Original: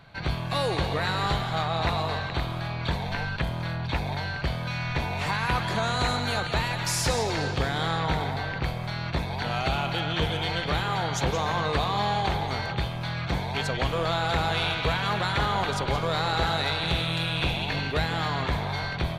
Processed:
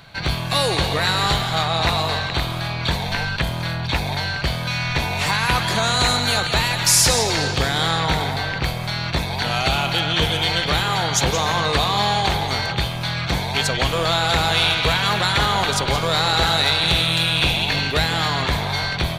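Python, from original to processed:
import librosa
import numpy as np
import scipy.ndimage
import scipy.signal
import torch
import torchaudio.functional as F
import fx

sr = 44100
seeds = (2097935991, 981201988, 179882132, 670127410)

y = fx.high_shelf(x, sr, hz=3200.0, db=11.5)
y = y * librosa.db_to_amplitude(5.0)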